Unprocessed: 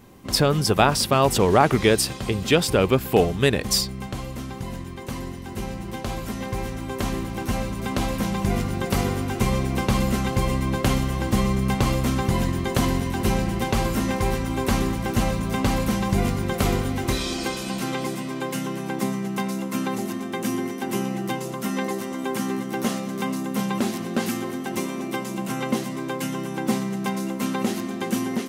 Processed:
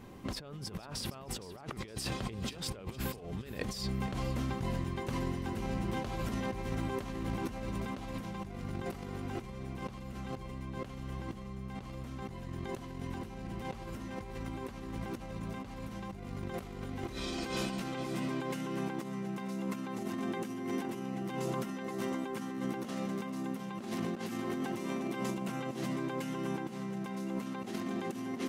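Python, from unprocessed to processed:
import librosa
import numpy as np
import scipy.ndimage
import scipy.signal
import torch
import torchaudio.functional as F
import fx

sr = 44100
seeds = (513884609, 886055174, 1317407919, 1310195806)

p1 = fx.high_shelf(x, sr, hz=6300.0, db=-9.5)
p2 = fx.over_compress(p1, sr, threshold_db=-32.0, ratio=-1.0)
p3 = p2 + fx.echo_feedback(p2, sr, ms=464, feedback_pct=38, wet_db=-16.0, dry=0)
y = p3 * librosa.db_to_amplitude(-7.5)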